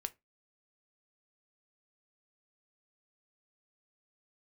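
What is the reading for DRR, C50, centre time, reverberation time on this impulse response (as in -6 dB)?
10.0 dB, 23.5 dB, 2 ms, 0.20 s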